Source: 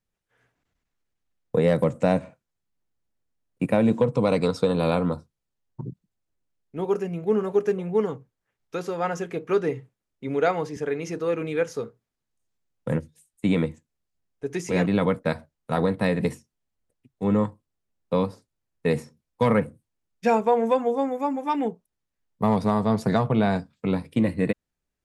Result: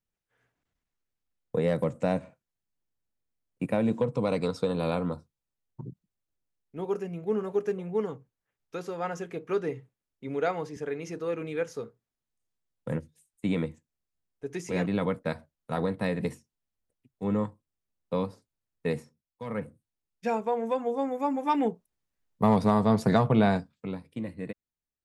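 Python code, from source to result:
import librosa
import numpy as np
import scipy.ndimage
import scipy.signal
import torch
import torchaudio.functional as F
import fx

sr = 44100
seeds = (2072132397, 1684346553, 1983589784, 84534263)

y = fx.gain(x, sr, db=fx.line((18.89, -6.0), (19.43, -18.5), (19.65, -8.0), (20.64, -8.0), (21.46, -0.5), (23.48, -0.5), (24.01, -13.0)))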